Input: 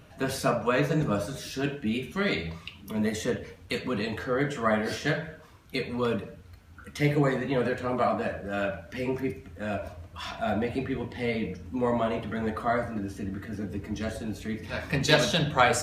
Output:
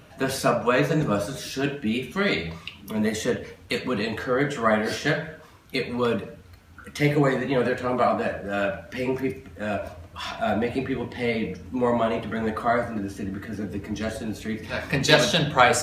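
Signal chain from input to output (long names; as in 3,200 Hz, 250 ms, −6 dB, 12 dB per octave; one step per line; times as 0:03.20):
low-shelf EQ 120 Hz −6 dB
level +4.5 dB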